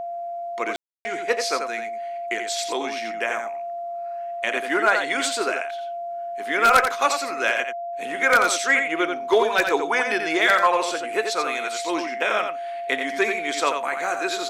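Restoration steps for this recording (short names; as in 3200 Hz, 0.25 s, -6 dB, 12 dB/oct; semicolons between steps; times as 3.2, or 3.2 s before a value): notch 690 Hz, Q 30; room tone fill 0.76–1.05; inverse comb 87 ms -6.5 dB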